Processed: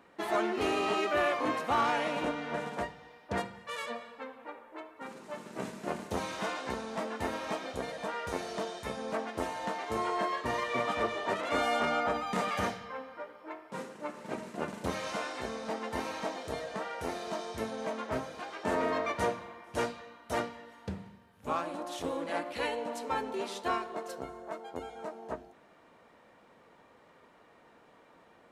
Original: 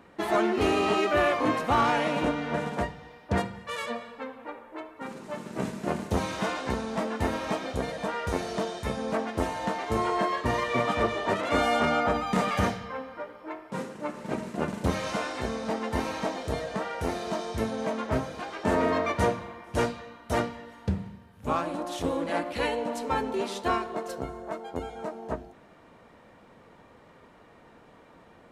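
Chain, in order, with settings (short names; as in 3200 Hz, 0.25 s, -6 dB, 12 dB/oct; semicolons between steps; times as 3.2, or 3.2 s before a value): low shelf 190 Hz -11 dB; gain -4 dB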